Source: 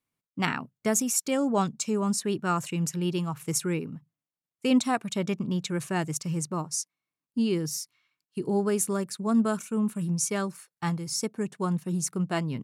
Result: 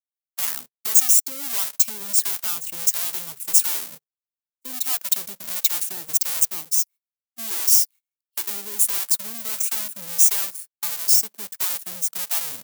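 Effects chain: half-waves squared off; in parallel at +3 dB: limiter -20 dBFS, peak gain reduction 10.5 dB; on the sum: sample leveller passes 1; compressor 10:1, threshold -17 dBFS, peak gain reduction 8 dB; tilt +2.5 dB/oct; harmonic tremolo 1.5 Hz, depth 70%, crossover 510 Hz; RIAA curve recording; gate -23 dBFS, range -22 dB; gain -14 dB

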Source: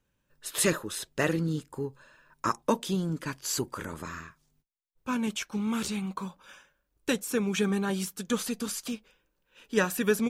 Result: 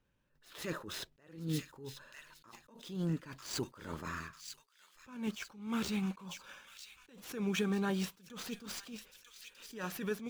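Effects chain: median filter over 5 samples; compressor, threshold -28 dBFS, peak gain reduction 9.5 dB; on a send: thin delay 0.946 s, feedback 44%, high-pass 2600 Hz, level -8 dB; on the sum: attack slew limiter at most 110 dB/s; gain -1 dB

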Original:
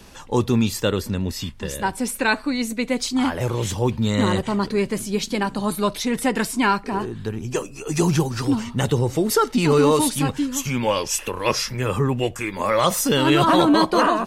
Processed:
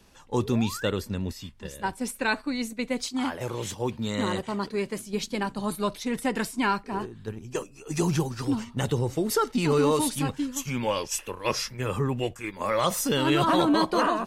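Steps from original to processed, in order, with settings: gate -26 dBFS, range -6 dB; 0.4–0.9 painted sound rise 330–2200 Hz -34 dBFS; 3.04–5.07 low shelf 120 Hz -11 dB; gain -6 dB

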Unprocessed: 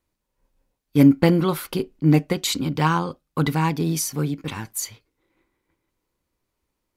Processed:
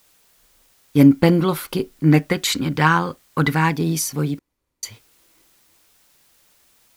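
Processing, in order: 1.91–3.75 bell 1700 Hz +9 dB 0.74 oct; requantised 10-bit, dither triangular; 4.39–4.83 room tone; gain +2 dB

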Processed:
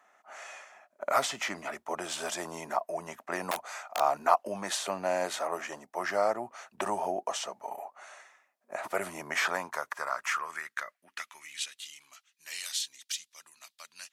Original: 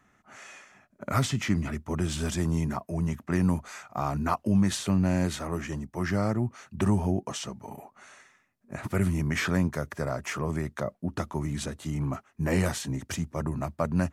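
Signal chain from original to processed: 3.51–4.01 wrapped overs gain 24.5 dB; high-pass sweep 660 Hz -> 3600 Hz, 9.26–12.08

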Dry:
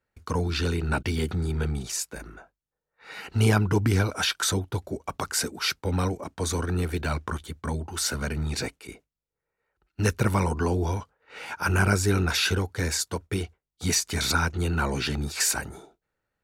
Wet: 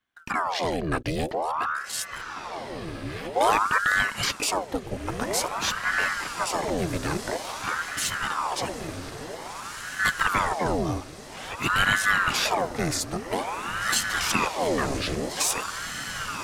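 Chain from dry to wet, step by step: diffused feedback echo 1.955 s, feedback 52%, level -7.5 dB; ring modulator with a swept carrier 900 Hz, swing 80%, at 0.5 Hz; gain +2 dB

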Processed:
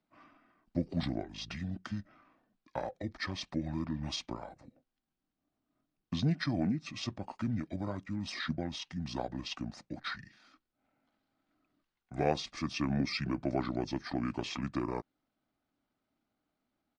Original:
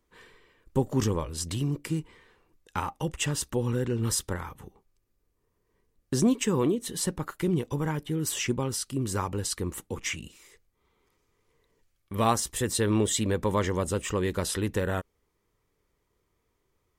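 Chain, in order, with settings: three-band isolator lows -15 dB, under 180 Hz, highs -19 dB, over 7600 Hz; pitch shift -7.5 st; gain -5 dB

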